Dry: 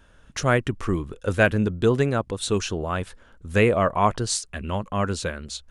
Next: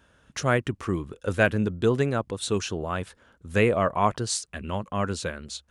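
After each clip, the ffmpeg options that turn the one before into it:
-af "highpass=74,volume=0.75"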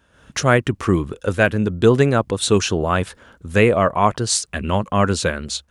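-af "dynaudnorm=f=110:g=3:m=3.55"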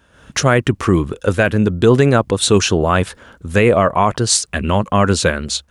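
-af "alimiter=level_in=2:limit=0.891:release=50:level=0:latency=1,volume=0.891"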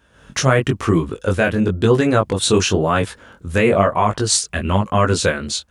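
-af "flanger=delay=18:depth=5:speed=0.99,volume=1.12"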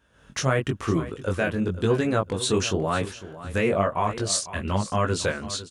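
-af "aecho=1:1:501|1002:0.178|0.0302,volume=0.398"

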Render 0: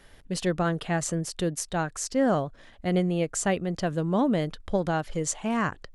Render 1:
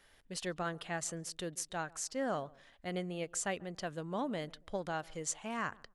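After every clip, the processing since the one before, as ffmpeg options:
-filter_complex "[0:a]lowshelf=f=490:g=-10,asplit=2[s0][s1];[s1]adelay=139,lowpass=f=1000:p=1,volume=0.0794,asplit=2[s2][s3];[s3]adelay=139,lowpass=f=1000:p=1,volume=0.29[s4];[s0][s2][s4]amix=inputs=3:normalize=0,volume=0.447"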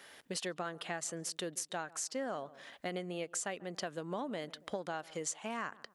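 -af "highpass=210,acompressor=threshold=0.00398:ratio=4,volume=3.35"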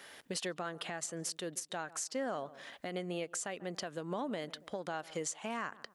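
-af "alimiter=level_in=1.78:limit=0.0631:level=0:latency=1:release=150,volume=0.562,volume=1.33"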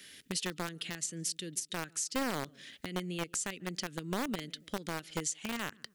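-filter_complex "[0:a]bandreject=f=432.5:t=h:w=4,bandreject=f=865:t=h:w=4,bandreject=f=1297.5:t=h:w=4,acrossover=split=360|1900[s0][s1][s2];[s1]acrusher=bits=3:dc=4:mix=0:aa=0.000001[s3];[s0][s3][s2]amix=inputs=3:normalize=0,volume=1.58"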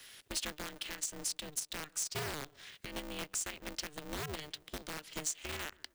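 -filter_complex "[0:a]lowshelf=f=440:g=-5.5,acrossover=split=410|1600|2600[s0][s1][s2][s3];[s1]alimiter=level_in=5.01:limit=0.0631:level=0:latency=1,volume=0.2[s4];[s0][s4][s2][s3]amix=inputs=4:normalize=0,aeval=exprs='val(0)*sgn(sin(2*PI*150*n/s))':c=same,volume=0.891"

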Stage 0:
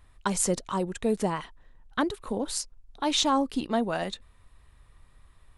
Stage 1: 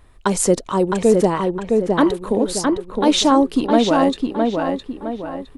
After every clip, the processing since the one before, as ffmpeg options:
-filter_complex "[0:a]equalizer=f=390:t=o:w=1.6:g=7.5,asplit=2[s0][s1];[s1]adelay=662,lowpass=f=2600:p=1,volume=0.708,asplit=2[s2][s3];[s3]adelay=662,lowpass=f=2600:p=1,volume=0.43,asplit=2[s4][s5];[s5]adelay=662,lowpass=f=2600:p=1,volume=0.43,asplit=2[s6][s7];[s7]adelay=662,lowpass=f=2600:p=1,volume=0.43,asplit=2[s8][s9];[s9]adelay=662,lowpass=f=2600:p=1,volume=0.43,asplit=2[s10][s11];[s11]adelay=662,lowpass=f=2600:p=1,volume=0.43[s12];[s0][s2][s4][s6][s8][s10][s12]amix=inputs=7:normalize=0,volume=2"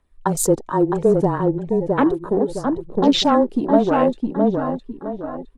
-af "afreqshift=-20,afwtdn=0.0501,aphaser=in_gain=1:out_gain=1:delay=3.3:decay=0.33:speed=0.67:type=triangular,volume=0.891"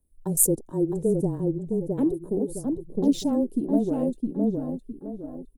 -af "firequalizer=gain_entry='entry(300,0);entry(1200,-25);entry(10000,13)':delay=0.05:min_phase=1,volume=0.562"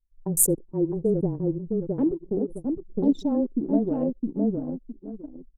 -filter_complex "[0:a]asplit=2[s0][s1];[s1]adelay=93.29,volume=0.0501,highshelf=f=4000:g=-2.1[s2];[s0][s2]amix=inputs=2:normalize=0,anlmdn=39.8"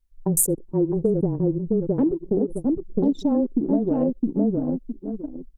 -af "acompressor=threshold=0.0631:ratio=6,volume=2.24"

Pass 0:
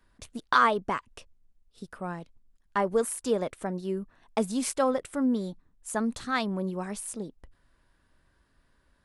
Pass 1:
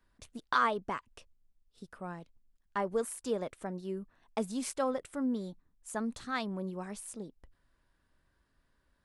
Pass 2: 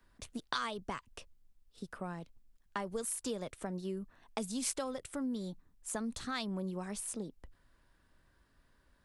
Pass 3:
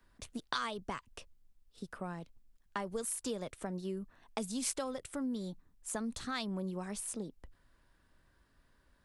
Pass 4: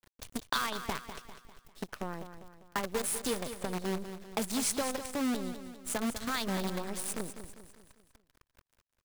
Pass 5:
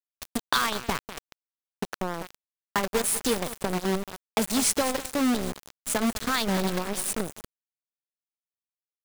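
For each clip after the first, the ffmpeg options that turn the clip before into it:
-af "equalizer=f=10000:t=o:w=0.28:g=-2,volume=0.473"
-filter_complex "[0:a]acrossover=split=140|3000[s0][s1][s2];[s1]acompressor=threshold=0.00794:ratio=5[s3];[s0][s3][s2]amix=inputs=3:normalize=0,volume=1.68"
-af anull
-filter_complex "[0:a]acrusher=bits=7:dc=4:mix=0:aa=0.000001,asplit=2[s0][s1];[s1]aecho=0:1:199|398|597|796|995:0.299|0.143|0.0688|0.033|0.0158[s2];[s0][s2]amix=inputs=2:normalize=0,volume=1.58"
-af "aeval=exprs='val(0)*gte(abs(val(0)),0.0158)':c=same,volume=2.37"

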